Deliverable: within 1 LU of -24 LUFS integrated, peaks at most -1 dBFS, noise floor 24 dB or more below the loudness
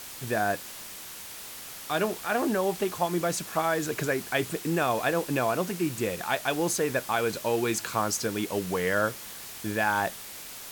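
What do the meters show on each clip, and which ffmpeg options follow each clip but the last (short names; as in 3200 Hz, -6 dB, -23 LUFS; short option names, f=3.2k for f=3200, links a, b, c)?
noise floor -42 dBFS; noise floor target -53 dBFS; loudness -28.5 LUFS; peak -11.0 dBFS; loudness target -24.0 LUFS
-> -af "afftdn=nr=11:nf=-42"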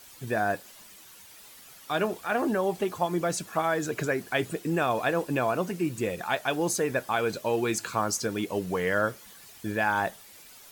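noise floor -51 dBFS; noise floor target -53 dBFS
-> -af "afftdn=nr=6:nf=-51"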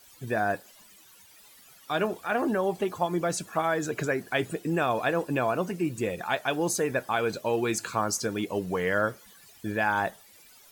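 noise floor -55 dBFS; loudness -28.5 LUFS; peak -11.0 dBFS; loudness target -24.0 LUFS
-> -af "volume=4.5dB"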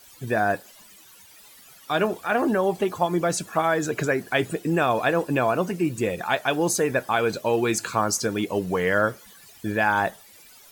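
loudness -24.0 LUFS; peak -6.5 dBFS; noise floor -50 dBFS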